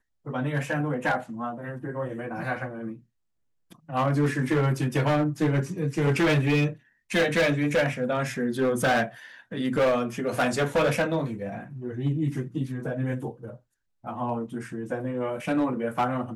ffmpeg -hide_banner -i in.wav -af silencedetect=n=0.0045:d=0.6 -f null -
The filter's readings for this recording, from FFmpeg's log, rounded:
silence_start: 3.00
silence_end: 3.71 | silence_duration: 0.71